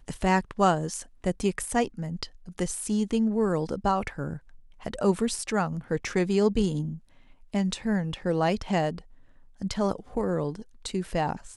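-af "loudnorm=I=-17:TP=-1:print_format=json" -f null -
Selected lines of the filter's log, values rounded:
"input_i" : "-28.3",
"input_tp" : "-9.1",
"input_lra" : "3.3",
"input_thresh" : "-38.9",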